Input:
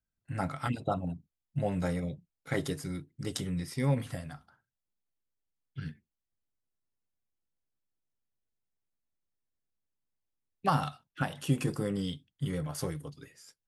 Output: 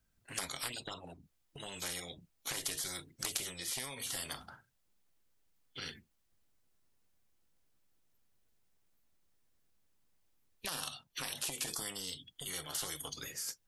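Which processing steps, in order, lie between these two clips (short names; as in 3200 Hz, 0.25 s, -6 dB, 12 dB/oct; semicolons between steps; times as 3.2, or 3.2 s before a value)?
spectral noise reduction 21 dB; compressor 6:1, threshold -46 dBFS, peak gain reduction 22 dB; spectral compressor 10:1; gain +11.5 dB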